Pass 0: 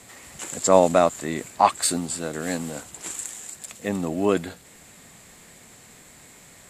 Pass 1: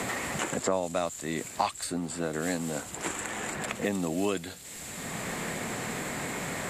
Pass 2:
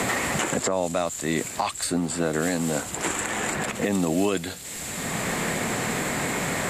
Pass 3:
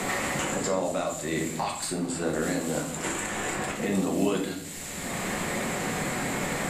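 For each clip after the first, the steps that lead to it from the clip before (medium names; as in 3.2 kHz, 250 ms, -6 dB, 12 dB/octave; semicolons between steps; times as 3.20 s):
three bands compressed up and down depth 100%; trim -4.5 dB
peak limiter -21 dBFS, peak gain reduction 8 dB; trim +7.5 dB
simulated room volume 150 m³, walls mixed, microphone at 0.99 m; trim -6.5 dB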